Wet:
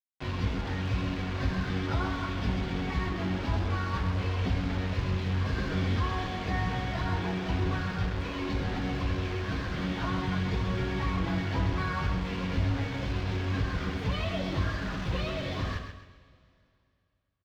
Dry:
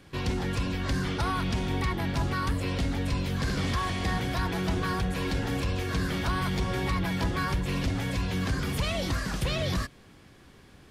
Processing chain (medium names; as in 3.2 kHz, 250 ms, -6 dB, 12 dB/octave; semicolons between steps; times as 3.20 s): plain phase-vocoder stretch 1.6×; bit crusher 6-bit; distance through air 220 m; feedback delay 132 ms, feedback 32%, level -8 dB; two-slope reverb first 0.53 s, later 2.7 s, from -14 dB, DRR 8 dB